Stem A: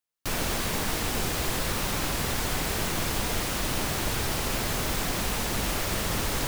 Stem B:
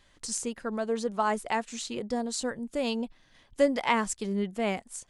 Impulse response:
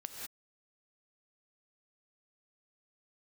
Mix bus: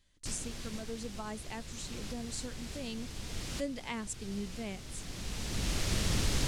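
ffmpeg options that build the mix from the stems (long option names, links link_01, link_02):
-filter_complex "[0:a]lowpass=7000,volume=1.5dB[link_01];[1:a]volume=-5.5dB,asplit=2[link_02][link_03];[link_03]apad=whole_len=285595[link_04];[link_01][link_04]sidechaincompress=threshold=-44dB:ratio=8:attack=6.9:release=988[link_05];[link_05][link_02]amix=inputs=2:normalize=0,equalizer=frequency=940:width_type=o:width=2.9:gain=-12"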